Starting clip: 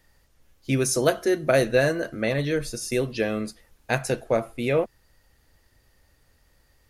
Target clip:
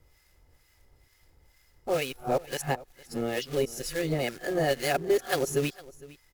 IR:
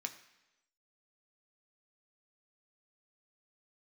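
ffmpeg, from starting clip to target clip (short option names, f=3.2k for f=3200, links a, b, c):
-filter_complex "[0:a]areverse,asplit=2[a][b];[b]acompressor=threshold=-29dB:ratio=6,volume=-2dB[c];[a][c]amix=inputs=2:normalize=0,aecho=1:1:2.6:0.33,acrusher=bits=3:mode=log:mix=0:aa=0.000001,acrossover=split=1000[d][e];[d]aeval=exprs='val(0)*(1-0.7/2+0.7/2*cos(2*PI*2*n/s))':c=same[f];[e]aeval=exprs='val(0)*(1-0.7/2-0.7/2*cos(2*PI*2*n/s))':c=same[g];[f][g]amix=inputs=2:normalize=0,asetrate=48000,aresample=44100,aecho=1:1:458:0.0944,volume=-4dB"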